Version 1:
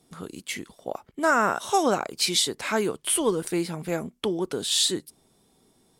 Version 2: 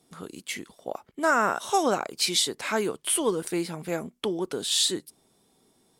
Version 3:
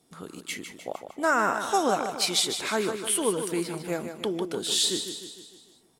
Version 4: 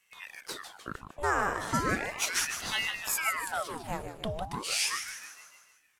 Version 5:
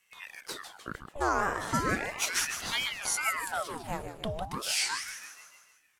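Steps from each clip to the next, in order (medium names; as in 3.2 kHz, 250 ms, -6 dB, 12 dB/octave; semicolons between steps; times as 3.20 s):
bass shelf 120 Hz -7.5 dB; trim -1 dB
feedback delay 152 ms, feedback 53%, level -8.5 dB; trim -1 dB
ring modulator with a swept carrier 1.3 kHz, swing 85%, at 0.36 Hz; trim -2 dB
warped record 33 1/3 rpm, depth 250 cents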